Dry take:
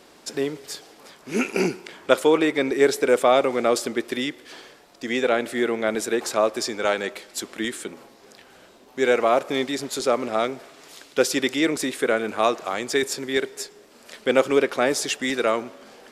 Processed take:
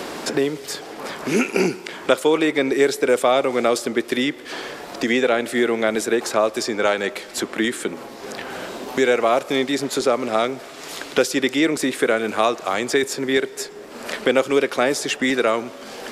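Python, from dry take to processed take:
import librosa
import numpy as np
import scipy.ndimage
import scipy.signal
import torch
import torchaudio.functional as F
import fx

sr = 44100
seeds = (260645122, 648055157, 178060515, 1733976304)

y = fx.band_squash(x, sr, depth_pct=70)
y = y * librosa.db_to_amplitude(2.5)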